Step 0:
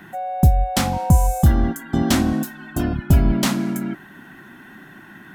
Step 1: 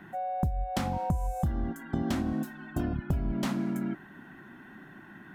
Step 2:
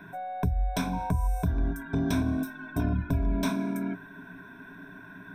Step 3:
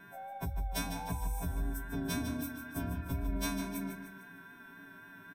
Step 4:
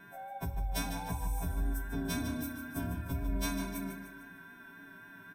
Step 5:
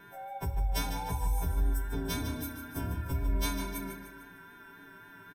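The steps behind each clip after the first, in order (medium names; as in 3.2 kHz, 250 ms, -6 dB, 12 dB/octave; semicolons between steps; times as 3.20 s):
treble shelf 3 kHz -10.5 dB; compression 10:1, threshold -20 dBFS, peak gain reduction 12 dB; trim -5.5 dB
one-sided wavefolder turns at -22.5 dBFS; rippled EQ curve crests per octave 1.6, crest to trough 16 dB
partials quantised in pitch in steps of 2 st; vibrato 3.8 Hz 28 cents; feedback delay 151 ms, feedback 47%, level -9 dB; trim -8 dB
reverberation RT60 1.4 s, pre-delay 18 ms, DRR 10.5 dB
comb 2.2 ms, depth 48%; trim +2 dB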